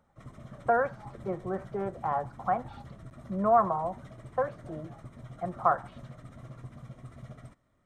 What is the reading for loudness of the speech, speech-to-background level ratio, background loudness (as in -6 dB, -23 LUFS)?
-30.5 LUFS, 17.5 dB, -48.0 LUFS